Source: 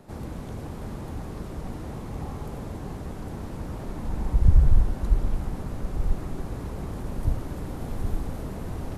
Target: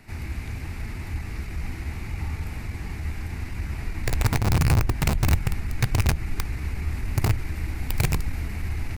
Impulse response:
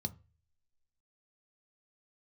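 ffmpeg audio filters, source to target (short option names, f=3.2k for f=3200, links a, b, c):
-filter_complex "[0:a]equalizer=f=125:t=o:w=1:g=-11,equalizer=f=500:t=o:w=1:g=-11,equalizer=f=1k:t=o:w=1:g=-9,equalizer=f=2k:t=o:w=1:g=12,acompressor=threshold=-22dB:ratio=5,aeval=exprs='(mod(13.3*val(0)+1,2)-1)/13.3':c=same,asetrate=46722,aresample=44100,atempo=0.943874,asplit=2[a][b];[1:a]atrim=start_sample=2205,asetrate=32193,aresample=44100[c];[b][c]afir=irnorm=-1:irlink=0,volume=-12dB[d];[a][d]amix=inputs=2:normalize=0,volume=5dB"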